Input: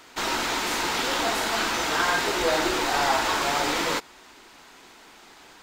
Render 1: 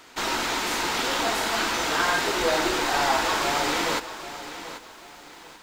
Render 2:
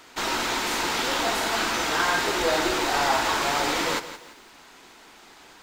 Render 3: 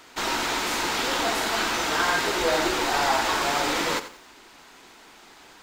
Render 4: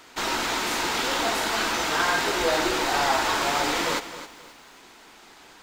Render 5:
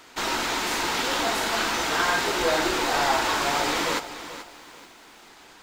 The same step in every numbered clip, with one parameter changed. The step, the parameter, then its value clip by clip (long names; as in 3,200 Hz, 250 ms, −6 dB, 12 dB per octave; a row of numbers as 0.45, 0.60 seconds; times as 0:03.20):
feedback echo at a low word length, delay time: 787, 170, 88, 264, 433 milliseconds